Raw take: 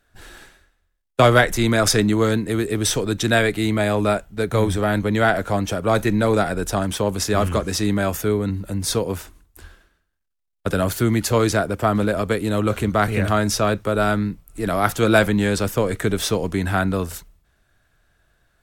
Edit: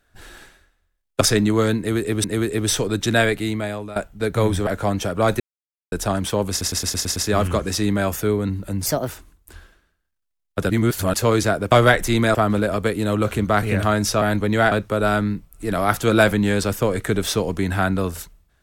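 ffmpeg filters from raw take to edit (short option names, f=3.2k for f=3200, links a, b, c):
-filter_complex "[0:a]asplit=21[a][b][c][d][e][f][g][h][i][j][k][l][m][n][o][p][q][r][s][t][u];[a]atrim=end=1.212[v];[b]atrim=start=1.838:end=2.872[w];[c]atrim=start=2.408:end=4.13,asetpts=PTS-STARTPTS,afade=t=out:st=1.012:d=0.71:silence=0.112202[x];[d]atrim=start=4.13:end=4.842,asetpts=PTS-STARTPTS,afade=t=in:d=0.004:c=hsin:silence=0.112202[y];[e]atrim=start=5.338:end=6.07,asetpts=PTS-STARTPTS,afade=t=out:st=0.728:d=0.004:c=hsin[z];[f]atrim=start=6.07:end=6.59,asetpts=PTS-STARTPTS,volume=0[aa];[g]atrim=start=6.59:end=7.282,asetpts=PTS-STARTPTS,afade=t=in:d=0.004:c=hsin[ab];[h]atrim=start=7.168:end=7.282[ac];[i]atrim=start=7.168:end=7.282[ad];[j]atrim=start=7.168:end=7.282[ae];[k]atrim=start=7.168:end=7.282[af];[l]atrim=start=7.168:end=7.282[ag];[m]atrim=start=7.168:end=8.874[ah];[n]atrim=start=8.87:end=9.17,asetpts=PTS-STARTPTS,asetrate=58212,aresample=44100[ai];[o]atrim=start=9.166:end=10.782[aj];[p]atrim=start=10.778:end=11.222,asetpts=PTS-STARTPTS,areverse[ak];[q]atrim=start=11.218:end=11.802[al];[r]atrim=start=1.208:end=1.842[am];[s]atrim=start=11.798:end=13.672[an];[t]atrim=start=4.838:end=5.342[ao];[u]atrim=start=13.668[ap];[v][w]acrossfade=d=0.004:c1=hsin:c2=hsin[aq];[x][y]concat=n=2:v=0:a=1[ar];[aq][ar]acrossfade=d=0.004:c1=hsin:c2=hsin[as];[z][aa][ab]concat=n=3:v=0:a=1[at];[as][at]acrossfade=d=0.004:c1=hsin:c2=hsin[au];[au][ac]acrossfade=d=0.004:c1=hsin:c2=hsin[av];[av][ad]acrossfade=d=0.004:c1=hsin:c2=hsin[aw];[aw][ae]acrossfade=d=0.004:c1=hsin:c2=hsin[ax];[ax][af]acrossfade=d=0.004:c1=hsin:c2=hsin[ay];[ay][ag]acrossfade=d=0.004:c1=hsin:c2=hsin[az];[az][ah]acrossfade=d=0.004:c1=hsin:c2=hsin[ba];[ba][ai]acrossfade=d=0.004:c1=hsin:c2=hsin[bb];[bb][aj]acrossfade=d=0.004:c1=hsin:c2=hsin[bc];[bc][ak]acrossfade=d=0.004:c1=hsin:c2=hsin[bd];[bd][al]acrossfade=d=0.004:c1=hsin:c2=hsin[be];[be][am]acrossfade=d=0.004:c1=hsin:c2=hsin[bf];[bf][an]acrossfade=d=0.004:c1=hsin:c2=hsin[bg];[bg][ao]acrossfade=d=0.004:c1=hsin:c2=hsin[bh];[bh][ap]acrossfade=d=0.004:c1=hsin:c2=hsin"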